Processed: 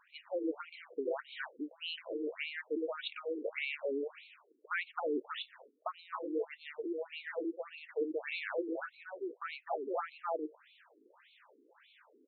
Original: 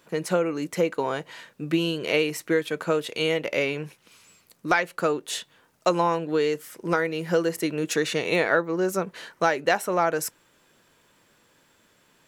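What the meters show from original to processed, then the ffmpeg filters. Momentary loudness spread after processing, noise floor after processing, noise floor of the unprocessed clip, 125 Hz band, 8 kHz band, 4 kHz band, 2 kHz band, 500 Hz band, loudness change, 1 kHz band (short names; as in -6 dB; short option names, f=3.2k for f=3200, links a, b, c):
8 LU, -69 dBFS, -63 dBFS, under -40 dB, under -40 dB, -12.5 dB, -13.5 dB, -13.5 dB, -14.0 dB, -15.0 dB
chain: -af "aecho=1:1:264:0.631,alimiter=limit=-13dB:level=0:latency=1:release=118,areverse,acompressor=threshold=-32dB:ratio=12,areverse,afftfilt=real='re*between(b*sr/1024,310*pow(3100/310,0.5+0.5*sin(2*PI*1.7*pts/sr))/1.41,310*pow(3100/310,0.5+0.5*sin(2*PI*1.7*pts/sr))*1.41)':imag='im*between(b*sr/1024,310*pow(3100/310,0.5+0.5*sin(2*PI*1.7*pts/sr))/1.41,310*pow(3100/310,0.5+0.5*sin(2*PI*1.7*pts/sr))*1.41)':win_size=1024:overlap=0.75,volume=3.5dB"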